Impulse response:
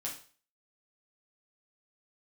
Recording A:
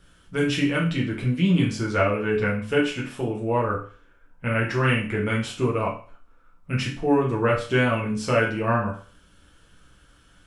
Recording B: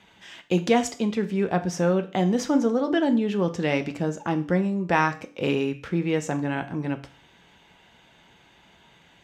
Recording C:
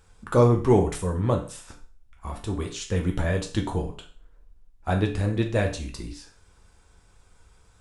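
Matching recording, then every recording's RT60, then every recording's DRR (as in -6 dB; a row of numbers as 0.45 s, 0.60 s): A; 0.40 s, 0.40 s, 0.40 s; -4.0 dB, 7.5 dB, 1.5 dB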